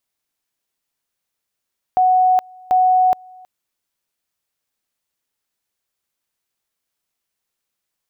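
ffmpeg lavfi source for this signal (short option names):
-f lavfi -i "aevalsrc='pow(10,(-10.5-28*gte(mod(t,0.74),0.42))/20)*sin(2*PI*740*t)':d=1.48:s=44100"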